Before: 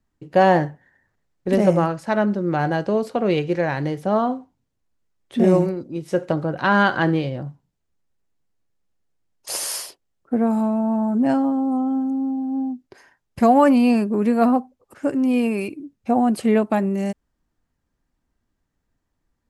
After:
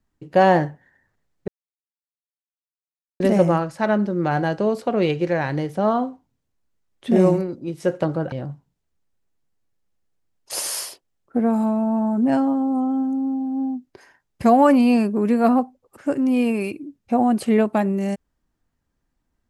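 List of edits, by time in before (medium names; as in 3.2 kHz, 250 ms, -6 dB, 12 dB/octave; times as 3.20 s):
1.48 s: insert silence 1.72 s
6.60–7.29 s: delete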